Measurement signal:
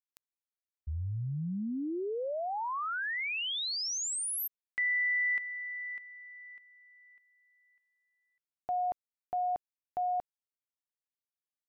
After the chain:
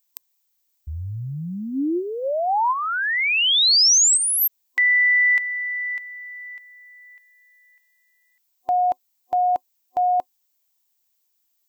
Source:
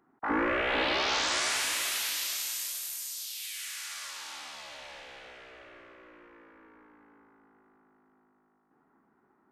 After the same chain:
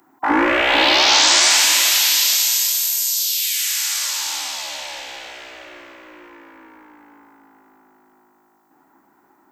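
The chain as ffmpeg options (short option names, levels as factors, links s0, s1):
-filter_complex "[0:a]superequalizer=6b=2.24:8b=1.78:9b=2.24:16b=0.355,acrossover=split=6400[s0][s1];[s1]acompressor=threshold=0.00501:ratio=4:attack=1:release=60[s2];[s0][s2]amix=inputs=2:normalize=0,crystalizer=i=7.5:c=0,volume=1.78"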